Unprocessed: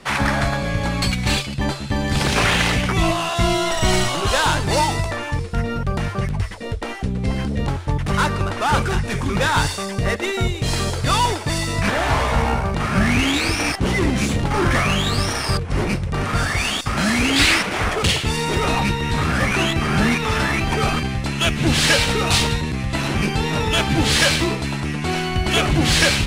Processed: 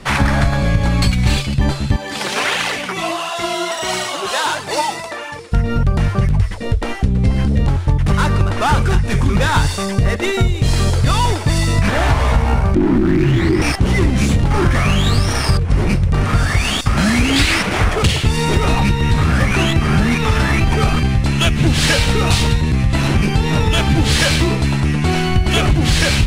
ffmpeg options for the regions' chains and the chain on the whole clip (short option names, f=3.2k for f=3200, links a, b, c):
-filter_complex "[0:a]asettb=1/sr,asplit=3[a][b][c];[a]atrim=end=1.964[d];[b]atrim=start=1.96:end=5.52,asetpts=PTS-STARTPTS,afade=t=in:d=0.004:c=qsin,afade=t=out:st=3.556:d=0.004:c=qsin,highpass=400,flanger=delay=0.6:depth=5.3:regen=34:speed=1.5:shape=triangular[e];[c]atrim=start=5.516[f];[d][e]acrossfade=d=0.004:c1=hsin:c2=qsin[g];[g][f]acrossfade=d=0.004:c1=qsin:c2=hsin,asettb=1/sr,asplit=3[h][i][j];[h]atrim=end=12.754[k];[i]atrim=start=12.75:end=13.62,asetpts=PTS-STARTPTS,afade=t=in:d=0.004:c=qsin,afade=t=out:st=0.866:d=0.004:c=qsin,bass=f=250:g=13,treble=f=4k:g=-12,asoftclip=type=hard:threshold=-12.5dB,afreqshift=-410[l];[j]atrim=start=13.616[m];[k][l]acrossfade=d=0.004:c1=hsin:c2=qsin[n];[n][m]acrossfade=d=0.004:c1=qsin:c2=hsin,lowshelf=f=150:g=10.5,acompressor=threshold=-14dB:ratio=6,volume=4dB"